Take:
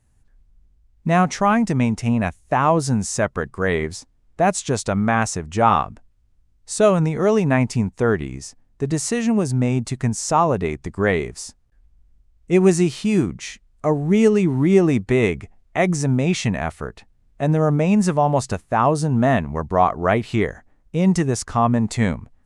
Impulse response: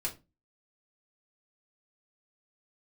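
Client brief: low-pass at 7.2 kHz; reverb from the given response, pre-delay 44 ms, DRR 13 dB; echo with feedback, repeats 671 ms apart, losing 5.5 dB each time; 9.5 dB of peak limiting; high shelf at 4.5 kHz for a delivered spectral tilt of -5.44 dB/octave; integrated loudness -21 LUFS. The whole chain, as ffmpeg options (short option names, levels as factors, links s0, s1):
-filter_complex "[0:a]lowpass=7200,highshelf=f=4500:g=7,alimiter=limit=0.266:level=0:latency=1,aecho=1:1:671|1342|2013|2684|3355|4026|4697:0.531|0.281|0.149|0.079|0.0419|0.0222|0.0118,asplit=2[s0][s1];[1:a]atrim=start_sample=2205,adelay=44[s2];[s1][s2]afir=irnorm=-1:irlink=0,volume=0.168[s3];[s0][s3]amix=inputs=2:normalize=0,volume=1.06"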